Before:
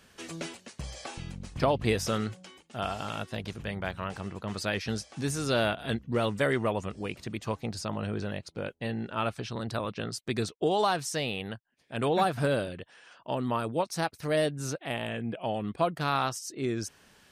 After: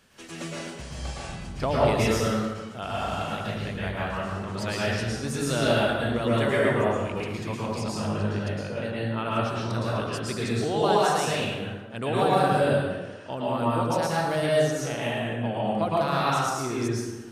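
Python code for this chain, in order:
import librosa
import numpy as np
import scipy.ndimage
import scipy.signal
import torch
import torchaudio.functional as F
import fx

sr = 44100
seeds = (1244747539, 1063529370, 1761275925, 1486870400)

y = fx.rev_plate(x, sr, seeds[0], rt60_s=1.3, hf_ratio=0.6, predelay_ms=100, drr_db=-6.5)
y = y * librosa.db_to_amplitude(-2.5)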